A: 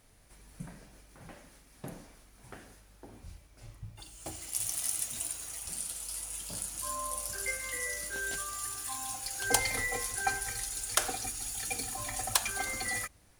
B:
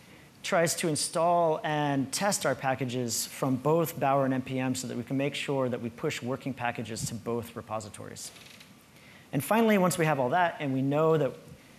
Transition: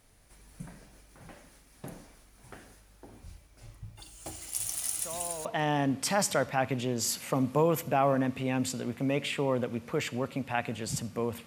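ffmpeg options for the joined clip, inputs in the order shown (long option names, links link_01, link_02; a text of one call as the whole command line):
ffmpeg -i cue0.wav -i cue1.wav -filter_complex "[1:a]asplit=2[link_01][link_02];[0:a]apad=whole_dur=11.46,atrim=end=11.46,atrim=end=5.452[link_03];[link_02]atrim=start=1.548:end=7.56[link_04];[link_01]atrim=start=1.05:end=1.55,asetpts=PTS-STARTPTS,volume=-15.5dB,afade=type=in:duration=0.004:curve=hsin,afade=type=out:start_time=0.496:duration=0.004:curve=hsin,adelay=4950[link_05];[link_03][link_04]acrossfade=duration=0.004:curve1=hsin:curve2=hsin[link_06];[link_06][link_05]amix=inputs=2:normalize=0" out.wav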